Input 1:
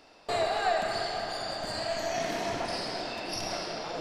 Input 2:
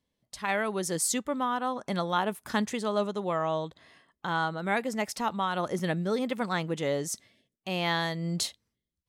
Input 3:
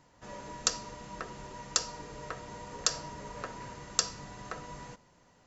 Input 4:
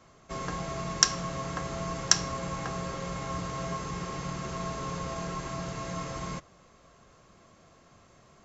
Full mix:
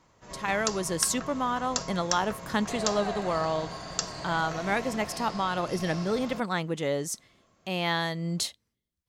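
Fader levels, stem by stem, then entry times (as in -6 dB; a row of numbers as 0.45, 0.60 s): -8.0, +0.5, -2.5, -8.0 dB; 2.40, 0.00, 0.00, 0.00 s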